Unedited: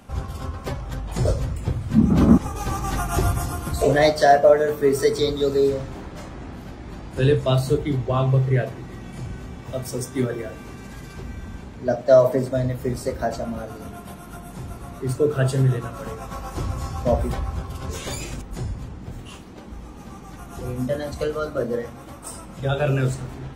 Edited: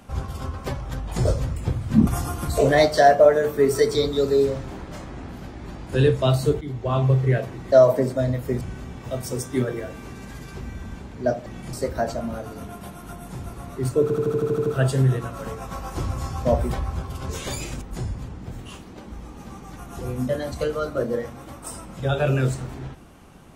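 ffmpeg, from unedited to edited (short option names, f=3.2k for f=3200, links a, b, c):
-filter_complex "[0:a]asplit=15[a][b][c][d][e][f][g][h][i][j][k][l][m][n][o];[a]atrim=end=2.072[p];[b]atrim=start=3.308:end=7.85,asetpts=PTS-STARTPTS,afade=t=out:st=4.538:d=0.004:c=hsin:silence=0.237137[q];[c]atrim=start=7.85:end=8.962,asetpts=PTS-STARTPTS,afade=t=in:d=0.41:silence=0.237137[r];[d]atrim=start=12.078:end=12.972[s];[e]atrim=start=9.228:end=12.082[t];[f]atrim=start=8.958:end=9.232[u];[g]atrim=start=12.968:end=15.342[v];[h]atrim=start=15.258:end=15.342[w];[i]atrim=start=15.258:end=15.342[x];[j]atrim=start=15.258:end=15.342[y];[k]atrim=start=15.258:end=15.342[z];[l]atrim=start=15.258:end=15.342[aa];[m]atrim=start=15.258:end=15.342[ab];[n]atrim=start=15.258:end=15.342[ac];[o]atrim=start=15.258[ad];[q][r]concat=n=2:v=0:a=1[ae];[p][ae]acrossfade=d=0.004:c1=hsin:c2=hsin[af];[af][s]acrossfade=d=0.004:c1=hsin:c2=hsin[ag];[ag][t]acrossfade=d=0.004:c1=hsin:c2=hsin[ah];[ah][u]acrossfade=d=0.004:c1=hsin:c2=hsin[ai];[ai][v]acrossfade=d=0.004:c1=hsin:c2=hsin[aj];[aj][w]acrossfade=d=0.004:c1=hsin:c2=hsin[ak];[ak][x]acrossfade=d=0.004:c1=hsin:c2=hsin[al];[al][y]acrossfade=d=0.004:c1=hsin:c2=hsin[am];[am][z]acrossfade=d=0.004:c1=hsin:c2=hsin[an];[an][aa]acrossfade=d=0.004:c1=hsin:c2=hsin[ao];[ao][ab]acrossfade=d=0.004:c1=hsin:c2=hsin[ap];[ap][ac]acrossfade=d=0.004:c1=hsin:c2=hsin[aq];[aq][ad]acrossfade=d=0.004:c1=hsin:c2=hsin"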